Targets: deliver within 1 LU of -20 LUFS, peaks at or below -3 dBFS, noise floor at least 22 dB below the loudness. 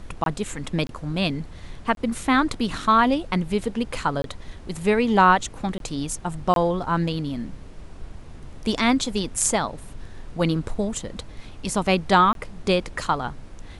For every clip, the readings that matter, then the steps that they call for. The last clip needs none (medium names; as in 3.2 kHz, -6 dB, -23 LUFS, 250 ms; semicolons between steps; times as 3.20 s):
dropouts 7; longest dropout 22 ms; noise floor -41 dBFS; noise floor target -46 dBFS; loudness -23.5 LUFS; peak level -3.5 dBFS; loudness target -20.0 LUFS
-> interpolate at 0.24/0.87/1.95/4.22/5.78/6.54/12.33 s, 22 ms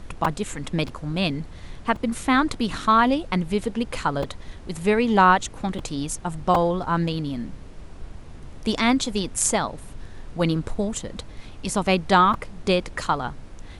dropouts 0; noise floor -41 dBFS; noise floor target -46 dBFS
-> noise print and reduce 6 dB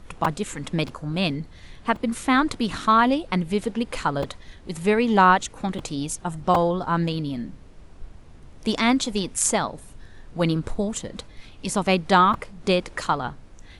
noise floor -46 dBFS; loudness -23.5 LUFS; peak level -3.5 dBFS; loudness target -20.0 LUFS
-> trim +3.5 dB; peak limiter -3 dBFS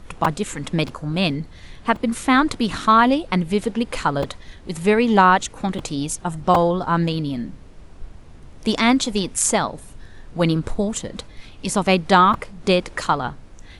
loudness -20.0 LUFS; peak level -3.0 dBFS; noise floor -43 dBFS